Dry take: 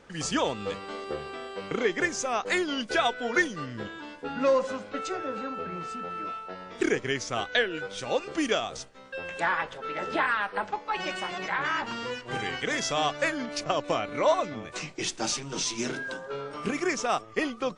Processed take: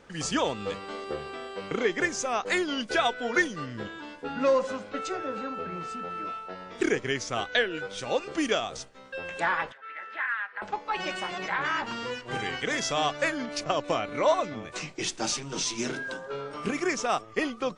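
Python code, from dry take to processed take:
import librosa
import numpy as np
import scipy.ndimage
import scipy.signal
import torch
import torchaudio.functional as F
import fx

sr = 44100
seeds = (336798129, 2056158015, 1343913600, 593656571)

y = fx.bandpass_q(x, sr, hz=1800.0, q=2.9, at=(9.72, 10.62))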